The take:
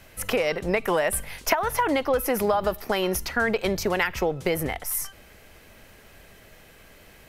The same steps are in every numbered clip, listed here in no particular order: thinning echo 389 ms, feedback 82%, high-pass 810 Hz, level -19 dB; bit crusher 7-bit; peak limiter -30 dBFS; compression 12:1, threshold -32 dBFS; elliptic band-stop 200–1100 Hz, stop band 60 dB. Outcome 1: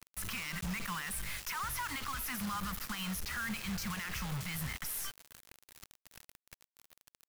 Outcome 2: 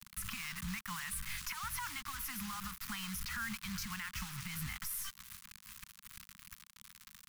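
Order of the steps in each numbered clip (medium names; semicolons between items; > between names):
elliptic band-stop > peak limiter > thinning echo > compression > bit crusher; compression > thinning echo > bit crusher > elliptic band-stop > peak limiter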